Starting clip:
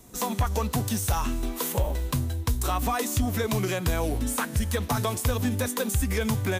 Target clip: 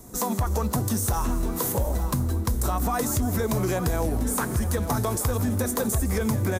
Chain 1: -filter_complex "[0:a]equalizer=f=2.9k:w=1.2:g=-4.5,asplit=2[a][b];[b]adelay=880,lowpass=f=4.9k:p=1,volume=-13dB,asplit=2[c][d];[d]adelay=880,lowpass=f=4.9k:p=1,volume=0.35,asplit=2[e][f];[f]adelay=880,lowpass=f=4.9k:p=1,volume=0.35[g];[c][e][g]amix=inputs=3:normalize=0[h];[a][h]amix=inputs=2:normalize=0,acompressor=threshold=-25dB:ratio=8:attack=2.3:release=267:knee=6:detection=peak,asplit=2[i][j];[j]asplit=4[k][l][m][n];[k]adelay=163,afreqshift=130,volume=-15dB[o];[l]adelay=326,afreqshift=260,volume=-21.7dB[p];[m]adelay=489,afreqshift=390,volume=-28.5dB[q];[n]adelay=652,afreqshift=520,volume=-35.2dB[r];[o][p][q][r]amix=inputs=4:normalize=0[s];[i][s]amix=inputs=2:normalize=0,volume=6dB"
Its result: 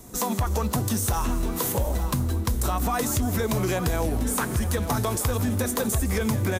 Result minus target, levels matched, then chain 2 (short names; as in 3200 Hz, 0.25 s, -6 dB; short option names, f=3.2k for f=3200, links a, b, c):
4000 Hz band +3.5 dB
-filter_complex "[0:a]equalizer=f=2.9k:w=1.2:g=-11,asplit=2[a][b];[b]adelay=880,lowpass=f=4.9k:p=1,volume=-13dB,asplit=2[c][d];[d]adelay=880,lowpass=f=4.9k:p=1,volume=0.35,asplit=2[e][f];[f]adelay=880,lowpass=f=4.9k:p=1,volume=0.35[g];[c][e][g]amix=inputs=3:normalize=0[h];[a][h]amix=inputs=2:normalize=0,acompressor=threshold=-25dB:ratio=8:attack=2.3:release=267:knee=6:detection=peak,asplit=2[i][j];[j]asplit=4[k][l][m][n];[k]adelay=163,afreqshift=130,volume=-15dB[o];[l]adelay=326,afreqshift=260,volume=-21.7dB[p];[m]adelay=489,afreqshift=390,volume=-28.5dB[q];[n]adelay=652,afreqshift=520,volume=-35.2dB[r];[o][p][q][r]amix=inputs=4:normalize=0[s];[i][s]amix=inputs=2:normalize=0,volume=6dB"